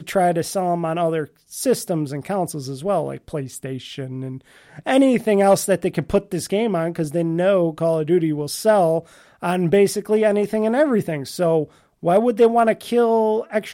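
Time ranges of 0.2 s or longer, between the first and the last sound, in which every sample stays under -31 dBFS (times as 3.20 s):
1.24–1.52 s
4.37–4.78 s
9.00–9.43 s
11.65–12.03 s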